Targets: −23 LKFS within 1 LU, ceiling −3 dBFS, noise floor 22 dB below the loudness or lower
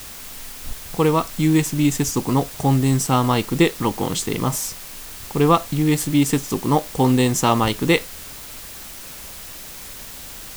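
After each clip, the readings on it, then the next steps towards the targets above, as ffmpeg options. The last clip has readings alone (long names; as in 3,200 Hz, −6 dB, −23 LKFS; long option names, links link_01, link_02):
background noise floor −37 dBFS; target noise floor −42 dBFS; integrated loudness −19.5 LKFS; sample peak −2.0 dBFS; target loudness −23.0 LKFS
→ -af "afftdn=noise_reduction=6:noise_floor=-37"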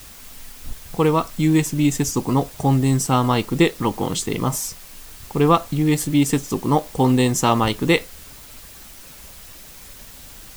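background noise floor −42 dBFS; integrated loudness −20.0 LKFS; sample peak −2.0 dBFS; target loudness −23.0 LKFS
→ -af "volume=-3dB"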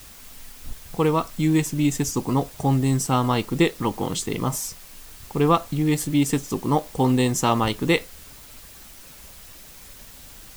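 integrated loudness −23.0 LKFS; sample peak −5.0 dBFS; background noise floor −45 dBFS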